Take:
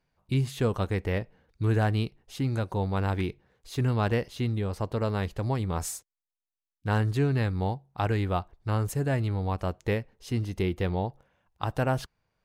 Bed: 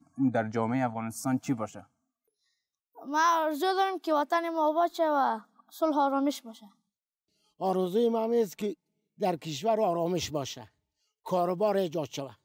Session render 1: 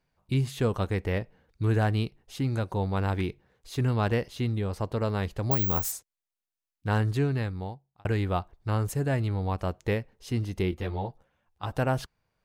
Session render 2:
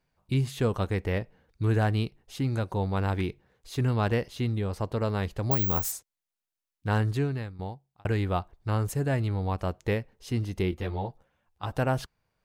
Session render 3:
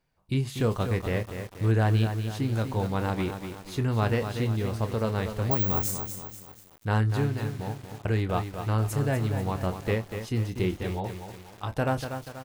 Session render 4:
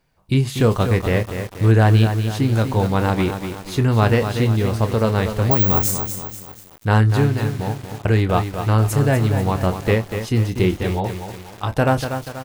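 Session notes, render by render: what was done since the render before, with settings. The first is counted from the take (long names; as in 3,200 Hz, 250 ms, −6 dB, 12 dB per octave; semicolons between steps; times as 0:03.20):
0:05.51–0:05.92: bad sample-rate conversion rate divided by 2×, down none, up zero stuff; 0:07.14–0:08.05: fade out linear; 0:10.71–0:11.73: string-ensemble chorus
0:06.95–0:07.59: fade out equal-power, to −12 dB
double-tracking delay 27 ms −11 dB; feedback echo at a low word length 242 ms, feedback 55%, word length 7 bits, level −7.5 dB
level +9.5 dB; brickwall limiter −2 dBFS, peak gain reduction 1.5 dB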